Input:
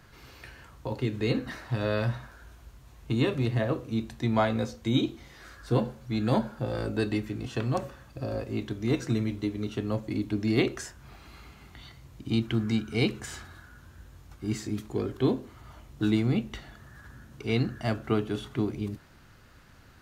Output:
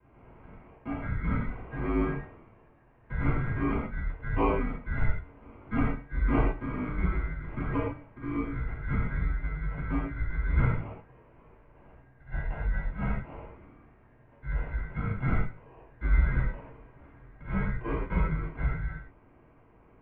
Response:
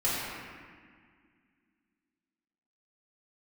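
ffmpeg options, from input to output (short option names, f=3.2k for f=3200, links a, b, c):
-filter_complex "[0:a]asettb=1/sr,asplit=3[a][b][c];[a]atrim=end=11.024[d];[b]atrim=start=11.02:end=13.28,asetpts=PTS-STARTPTS,afade=t=in:d=0.004:c=qsin,afade=t=out:st=2.256:d=0.004:c=qsin,flanger=delay=15:depth=4.6:speed=1[e];[c]atrim=start=13.276[f];[d][e]acrossfade=d=0.004:c1=hsin:c2=qsin[g];[g][f]acrossfade=d=0.004:c1=qsin:c2=hsin,acrusher=samples=22:mix=1:aa=0.000001[h];[1:a]atrim=start_sample=2205,atrim=end_sample=6615[i];[h][i]afir=irnorm=-1:irlink=0,highpass=f=170:t=q:w=0.5412,highpass=f=170:t=q:w=1.307,lowpass=f=2.5k:t=q:w=0.5176,lowpass=f=2.5k:t=q:w=0.7071,lowpass=f=2.5k:t=q:w=1.932,afreqshift=-260,volume=-8dB"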